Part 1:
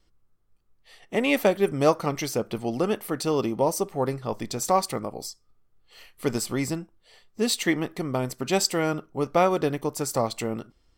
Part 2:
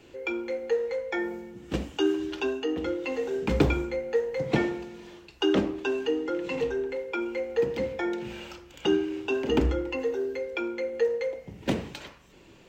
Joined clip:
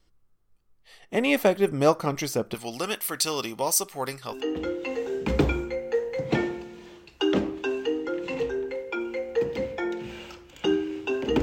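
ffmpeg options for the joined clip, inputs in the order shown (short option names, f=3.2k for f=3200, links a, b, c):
-filter_complex "[0:a]asettb=1/sr,asplit=3[a][b][c];[a]atrim=end=2.544[d];[b]atrim=start=2.54:end=4.43,asetpts=PTS-STARTPTS,afade=t=in:d=0.004:c=qsin,afade=t=out:st=1.886:d=0.004:c=qsin,tiltshelf=f=1.1k:g=-10[e];[c]atrim=start=4.426[f];[d][e]acrossfade=d=0.004:c1=hsin:c2=qsin[g];[g][f]acrossfade=d=0.004:c1=qsin:c2=hsin,apad=whole_dur=11.42,atrim=end=11.42,atrim=end=4.43,asetpts=PTS-STARTPTS[h];[1:a]atrim=start=2.48:end=9.63,asetpts=PTS-STARTPTS[i];[h][i]acrossfade=d=0.16:c1=tri:c2=tri"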